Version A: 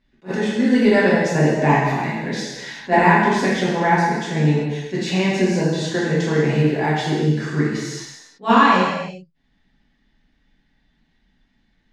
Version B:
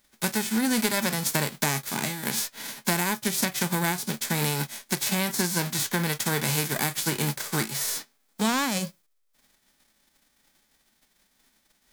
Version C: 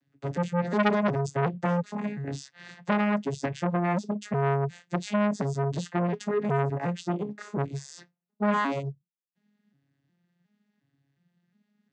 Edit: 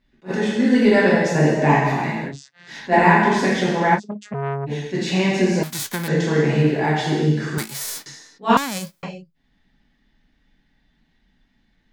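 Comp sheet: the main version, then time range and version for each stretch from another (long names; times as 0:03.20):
A
0:02.29–0:02.71: punch in from C, crossfade 0.10 s
0:03.97–0:04.69: punch in from C, crossfade 0.06 s
0:05.63–0:06.08: punch in from B
0:07.58–0:08.06: punch in from B
0:08.57–0:09.03: punch in from B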